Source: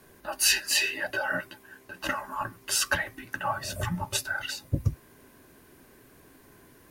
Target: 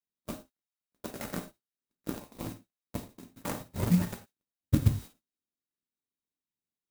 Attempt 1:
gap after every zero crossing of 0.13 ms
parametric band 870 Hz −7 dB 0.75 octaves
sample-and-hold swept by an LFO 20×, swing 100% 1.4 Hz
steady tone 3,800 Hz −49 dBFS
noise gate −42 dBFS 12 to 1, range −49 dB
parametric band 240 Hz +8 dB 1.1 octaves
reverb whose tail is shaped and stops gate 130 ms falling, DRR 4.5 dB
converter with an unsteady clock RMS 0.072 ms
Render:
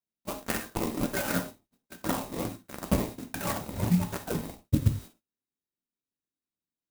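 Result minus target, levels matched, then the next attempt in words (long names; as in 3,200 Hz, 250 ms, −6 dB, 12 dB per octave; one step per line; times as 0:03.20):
gap after every zero crossing: distortion −5 dB
gap after every zero crossing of 0.39 ms
parametric band 870 Hz −7 dB 0.75 octaves
sample-and-hold swept by an LFO 20×, swing 100% 1.4 Hz
steady tone 3,800 Hz −49 dBFS
noise gate −42 dBFS 12 to 1, range −49 dB
parametric band 240 Hz +8 dB 1.1 octaves
reverb whose tail is shaped and stops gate 130 ms falling, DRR 4.5 dB
converter with an unsteady clock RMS 0.072 ms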